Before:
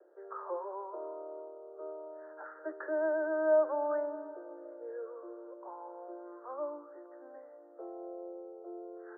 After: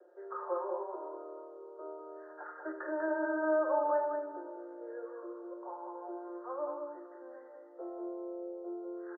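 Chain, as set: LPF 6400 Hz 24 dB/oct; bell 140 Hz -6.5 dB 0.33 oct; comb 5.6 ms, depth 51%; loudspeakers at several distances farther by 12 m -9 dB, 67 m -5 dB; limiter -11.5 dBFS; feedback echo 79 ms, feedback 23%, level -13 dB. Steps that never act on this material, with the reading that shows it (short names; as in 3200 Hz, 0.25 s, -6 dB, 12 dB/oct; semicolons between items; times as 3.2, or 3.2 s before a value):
LPF 6400 Hz: input band ends at 1600 Hz; bell 140 Hz: input band starts at 290 Hz; limiter -11.5 dBFS: input peak -20.0 dBFS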